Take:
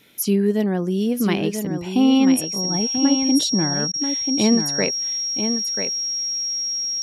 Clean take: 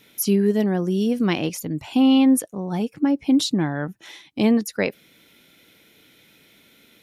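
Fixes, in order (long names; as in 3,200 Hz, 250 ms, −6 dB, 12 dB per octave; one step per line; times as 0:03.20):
notch filter 5,600 Hz, Q 30
repair the gap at 0:03.92, 16 ms
echo removal 988 ms −7 dB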